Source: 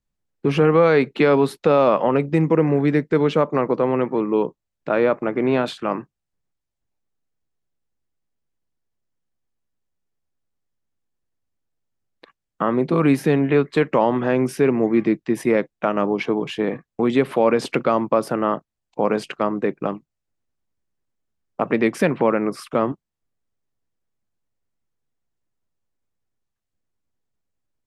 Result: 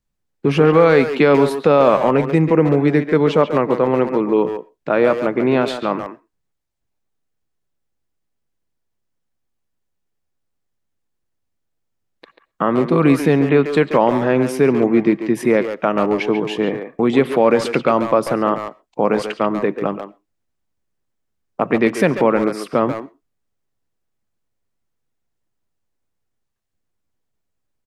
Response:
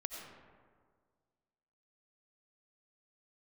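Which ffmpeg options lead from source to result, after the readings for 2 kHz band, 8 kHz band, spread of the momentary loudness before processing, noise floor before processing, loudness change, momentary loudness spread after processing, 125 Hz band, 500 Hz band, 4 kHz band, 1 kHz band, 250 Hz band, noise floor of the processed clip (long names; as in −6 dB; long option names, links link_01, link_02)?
+3.5 dB, +3.5 dB, 9 LU, −82 dBFS, +3.5 dB, 9 LU, +3.0 dB, +3.5 dB, +3.5 dB, +3.5 dB, +3.5 dB, −74 dBFS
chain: -filter_complex "[0:a]asplit=2[link_01][link_02];[link_02]adelay=140,highpass=300,lowpass=3400,asoftclip=type=hard:threshold=-15dB,volume=-7dB[link_03];[link_01][link_03]amix=inputs=2:normalize=0,asplit=2[link_04][link_05];[1:a]atrim=start_sample=2205,afade=type=out:start_time=0.18:duration=0.01,atrim=end_sample=8379[link_06];[link_05][link_06]afir=irnorm=-1:irlink=0,volume=-14.5dB[link_07];[link_04][link_07]amix=inputs=2:normalize=0,volume=2dB"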